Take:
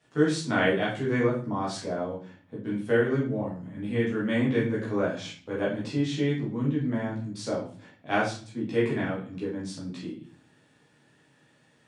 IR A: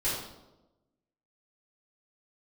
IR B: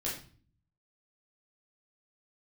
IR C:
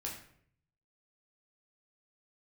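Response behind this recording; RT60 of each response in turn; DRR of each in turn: B; 1.0, 0.40, 0.65 seconds; −11.0, −7.0, −3.0 decibels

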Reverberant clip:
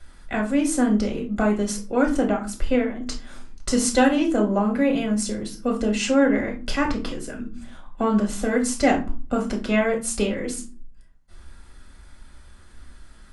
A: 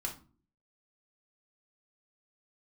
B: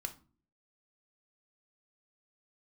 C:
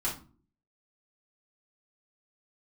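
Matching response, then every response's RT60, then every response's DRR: A; 0.40, 0.40, 0.40 seconds; 0.0, 6.5, −6.5 decibels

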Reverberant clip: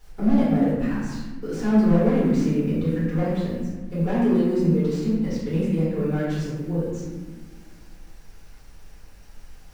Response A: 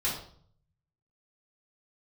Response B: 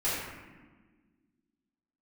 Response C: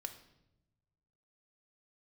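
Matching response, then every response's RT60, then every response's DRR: B; 0.55, 1.4, 0.90 seconds; −8.0, −12.0, 7.5 decibels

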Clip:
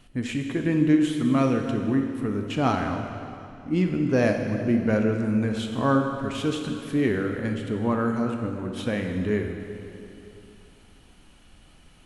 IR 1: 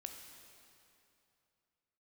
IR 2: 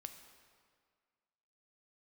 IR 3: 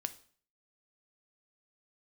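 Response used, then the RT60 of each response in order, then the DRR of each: 1; 2.7, 1.9, 0.50 seconds; 3.5, 6.5, 10.0 decibels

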